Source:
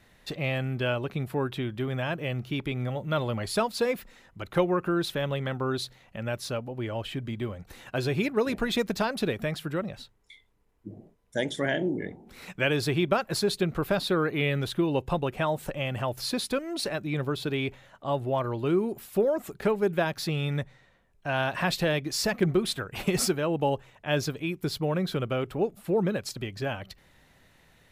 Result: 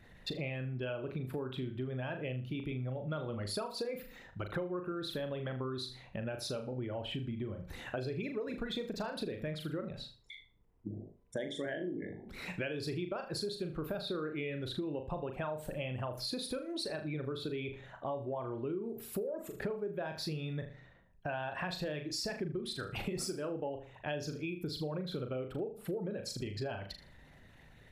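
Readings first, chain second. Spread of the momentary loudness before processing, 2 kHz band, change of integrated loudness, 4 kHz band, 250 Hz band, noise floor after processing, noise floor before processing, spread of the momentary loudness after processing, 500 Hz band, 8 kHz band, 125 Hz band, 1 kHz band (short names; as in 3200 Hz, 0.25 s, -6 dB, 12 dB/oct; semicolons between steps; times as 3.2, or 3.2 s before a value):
9 LU, -11.5 dB, -10.0 dB, -8.5 dB, -10.0 dB, -59 dBFS, -61 dBFS, 6 LU, -10.0 dB, -10.5 dB, -9.5 dB, -12.0 dB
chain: formant sharpening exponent 1.5; on a send: flutter echo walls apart 6.7 m, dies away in 0.32 s; on the sum: compressor 6:1, threshold -37 dBFS, peak gain reduction 17.5 dB; gain +1 dB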